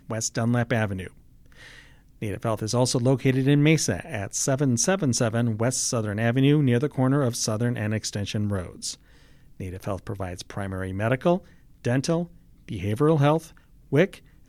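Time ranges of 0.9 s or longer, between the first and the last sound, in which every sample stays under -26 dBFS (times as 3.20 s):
1.07–2.22 s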